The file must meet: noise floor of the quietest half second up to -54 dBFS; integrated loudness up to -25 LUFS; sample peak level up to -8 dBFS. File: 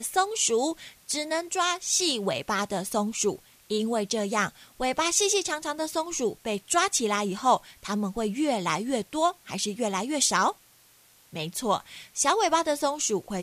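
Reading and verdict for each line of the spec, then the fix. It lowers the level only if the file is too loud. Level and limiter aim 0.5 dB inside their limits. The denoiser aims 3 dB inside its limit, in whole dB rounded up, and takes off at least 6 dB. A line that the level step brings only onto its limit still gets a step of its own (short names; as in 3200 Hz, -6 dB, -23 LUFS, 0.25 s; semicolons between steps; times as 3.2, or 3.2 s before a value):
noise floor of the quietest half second -58 dBFS: OK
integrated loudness -26.5 LUFS: OK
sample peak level -9.5 dBFS: OK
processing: none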